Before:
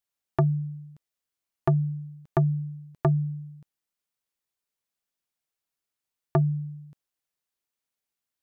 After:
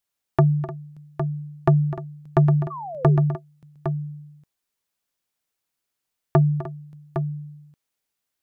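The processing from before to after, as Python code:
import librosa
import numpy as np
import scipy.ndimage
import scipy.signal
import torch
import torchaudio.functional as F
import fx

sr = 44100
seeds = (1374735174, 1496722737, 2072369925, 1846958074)

y = fx.echo_multitap(x, sr, ms=(253, 302, 809), db=(-14.5, -15.5, -8.5))
y = fx.spec_paint(y, sr, seeds[0], shape='fall', start_s=2.7, length_s=0.47, low_hz=350.0, high_hz=1200.0, level_db=-38.0)
y = F.gain(torch.from_numpy(y), 5.0).numpy()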